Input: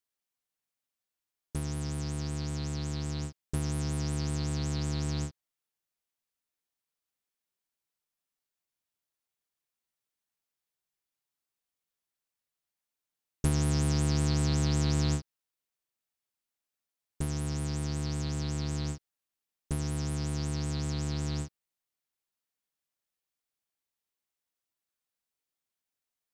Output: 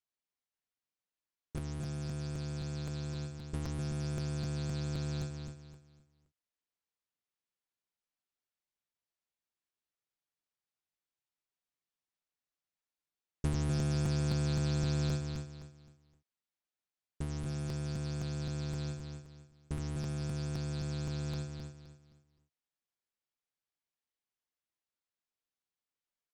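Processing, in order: air absorption 62 m; feedback echo 0.253 s, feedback 31%, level -6 dB; crackling interface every 0.26 s, samples 256, repeat, from 0.53; gain -5 dB

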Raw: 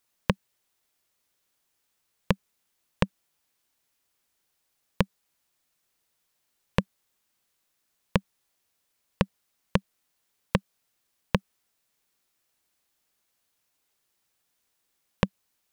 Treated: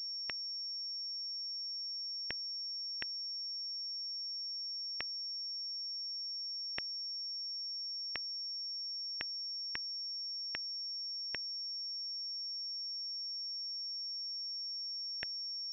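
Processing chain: elliptic high-pass 1800 Hz, stop band 40 dB; bit-crush 5-bit; pulse-width modulation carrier 5500 Hz; gain -5 dB

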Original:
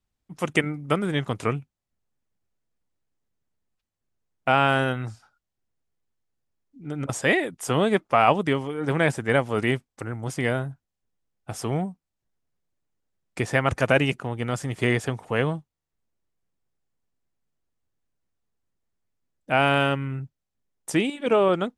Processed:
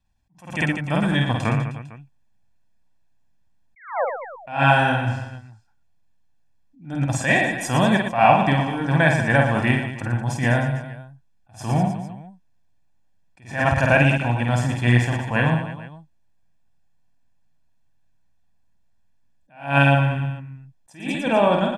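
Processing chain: high shelf 8300 Hz -11 dB; comb 1.2 ms, depth 78%; in parallel at 0 dB: compressor, threshold -26 dBFS, peak gain reduction 14 dB; on the sum: painted sound fall, 3.76–4.05, 470–2300 Hz -21 dBFS; on a send: reverse bouncing-ball echo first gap 50 ms, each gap 1.3×, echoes 5; on the sum: attack slew limiter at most 150 dB/s; gain -1 dB

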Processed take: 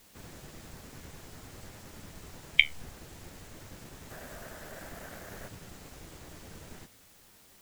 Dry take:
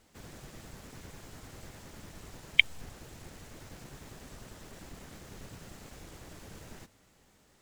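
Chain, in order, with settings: 4.1–5.48 fifteen-band EQ 630 Hz +10 dB, 1600 Hz +10 dB, 16000 Hz +11 dB; requantised 10-bit, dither triangular; flange 0.55 Hz, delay 9.5 ms, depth 4.2 ms, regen -62%; gain +4.5 dB

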